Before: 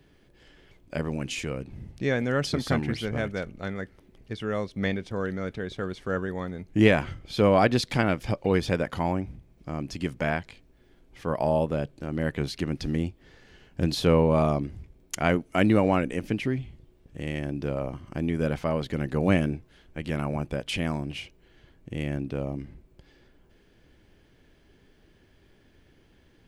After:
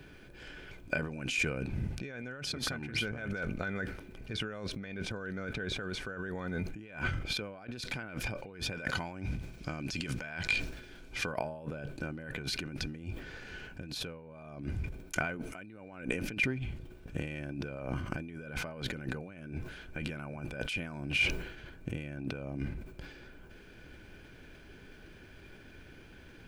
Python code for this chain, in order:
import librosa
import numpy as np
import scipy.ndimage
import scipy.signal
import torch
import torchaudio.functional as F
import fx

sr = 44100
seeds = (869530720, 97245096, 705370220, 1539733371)

y = fx.peak_eq(x, sr, hz=5100.0, db=9.0, octaves=2.2, at=(8.76, 11.32))
y = fx.over_compress(y, sr, threshold_db=-38.0, ratio=-1.0)
y = fx.small_body(y, sr, hz=(1500.0, 2400.0), ring_ms=40, db=15)
y = fx.sustainer(y, sr, db_per_s=69.0)
y = y * 10.0 ** (-3.5 / 20.0)